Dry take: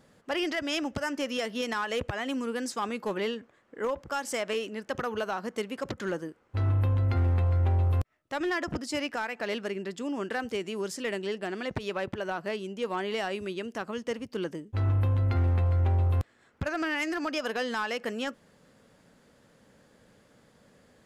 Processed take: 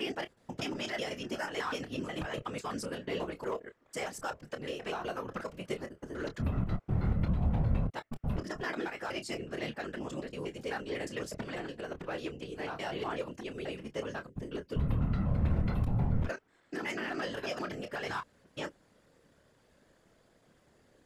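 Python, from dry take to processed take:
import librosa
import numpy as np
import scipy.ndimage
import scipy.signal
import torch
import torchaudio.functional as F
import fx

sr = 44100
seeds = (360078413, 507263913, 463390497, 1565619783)

y = fx.block_reorder(x, sr, ms=123.0, group=4)
y = fx.whisperise(y, sr, seeds[0])
y = fx.chorus_voices(y, sr, voices=6, hz=0.11, base_ms=27, depth_ms=1.5, mix_pct=25)
y = y * librosa.db_to_amplitude(-3.5)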